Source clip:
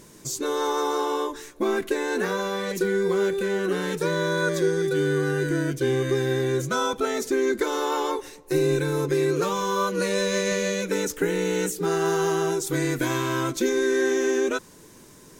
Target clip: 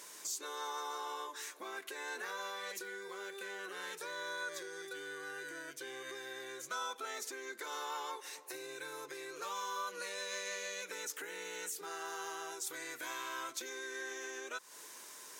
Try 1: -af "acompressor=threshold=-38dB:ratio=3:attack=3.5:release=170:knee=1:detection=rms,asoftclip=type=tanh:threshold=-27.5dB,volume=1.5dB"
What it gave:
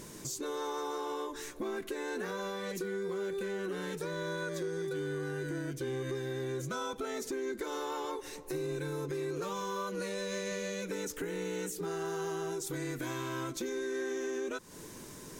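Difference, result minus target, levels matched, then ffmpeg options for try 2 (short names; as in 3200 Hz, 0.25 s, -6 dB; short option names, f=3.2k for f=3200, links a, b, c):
1000 Hz band -3.5 dB
-af "acompressor=threshold=-38dB:ratio=3:attack=3.5:release=170:knee=1:detection=rms,highpass=850,asoftclip=type=tanh:threshold=-27.5dB,volume=1.5dB"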